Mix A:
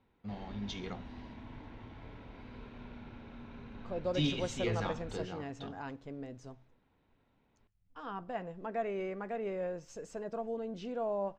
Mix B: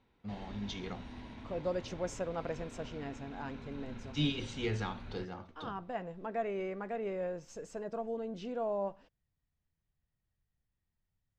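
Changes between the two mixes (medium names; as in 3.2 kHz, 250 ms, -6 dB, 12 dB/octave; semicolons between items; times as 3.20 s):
second voice: entry -2.40 s; background: remove low-pass 2.6 kHz 6 dB/octave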